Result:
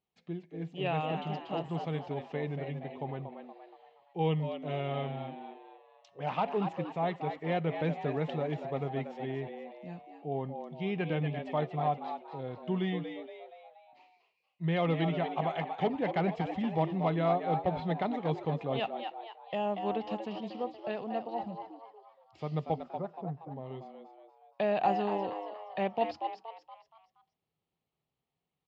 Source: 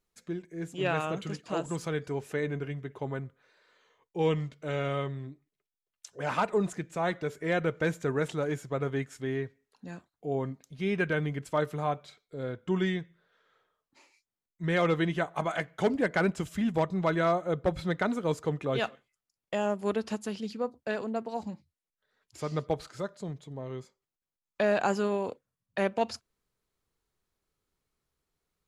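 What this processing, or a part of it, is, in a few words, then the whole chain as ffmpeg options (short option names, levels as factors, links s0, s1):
frequency-shifting delay pedal into a guitar cabinet: -filter_complex "[0:a]asettb=1/sr,asplit=3[s0][s1][s2];[s0]atrim=end=22.764[s3];[s1]atrim=start=22.76:end=23.5,asetpts=PTS-STARTPTS,afade=t=in:d=0.004:c=qsin,afade=t=out:st=0.736:d=0.004:c=qsin,lowpass=f=1600:w=0.5412,lowpass=f=1600:w=1.3066[s4];[s2]atrim=start=23.496[s5];[s3][s4]acrossfade=d=0.004:c1=hsin:c2=qsin[s6];[s6][s5]acrossfade=d=0.004:c1=qsin:c2=hsin,asplit=6[s7][s8][s9][s10][s11][s12];[s8]adelay=236,afreqshift=110,volume=0.398[s13];[s9]adelay=472,afreqshift=220,volume=0.176[s14];[s10]adelay=708,afreqshift=330,volume=0.0767[s15];[s11]adelay=944,afreqshift=440,volume=0.0339[s16];[s12]adelay=1180,afreqshift=550,volume=0.015[s17];[s7][s13][s14][s15][s16][s17]amix=inputs=6:normalize=0,highpass=78,equalizer=f=160:t=q:w=4:g=7,equalizer=f=770:t=q:w=4:g=9,equalizer=f=1500:t=q:w=4:g=-10,equalizer=f=2900:t=q:w=4:g=5,lowpass=f=4100:w=0.5412,lowpass=f=4100:w=1.3066,volume=0.531"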